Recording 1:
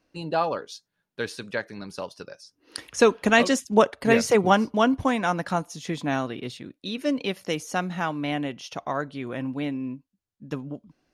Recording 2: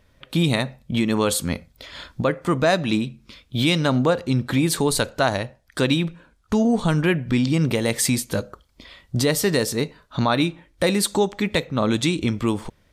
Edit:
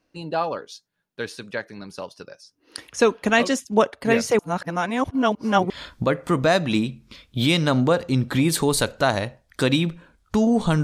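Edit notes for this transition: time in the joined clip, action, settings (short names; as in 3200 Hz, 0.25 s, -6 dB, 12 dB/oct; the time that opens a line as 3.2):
recording 1
4.39–5.7 reverse
5.7 switch to recording 2 from 1.88 s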